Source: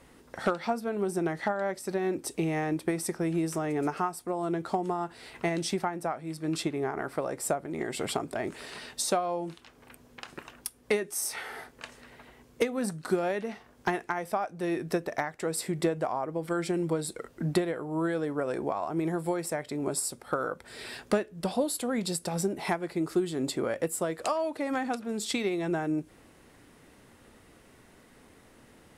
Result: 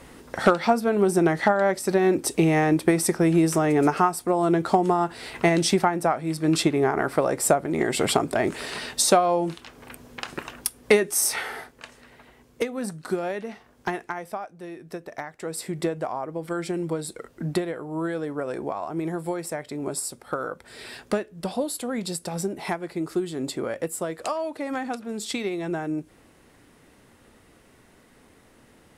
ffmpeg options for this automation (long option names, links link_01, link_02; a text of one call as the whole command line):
ffmpeg -i in.wav -af "volume=20.5dB,afade=type=out:start_time=11.32:duration=0.42:silence=0.354813,afade=type=out:start_time=14.03:duration=0.74:silence=0.298538,afade=type=in:start_time=14.77:duration=1.01:silence=0.281838" out.wav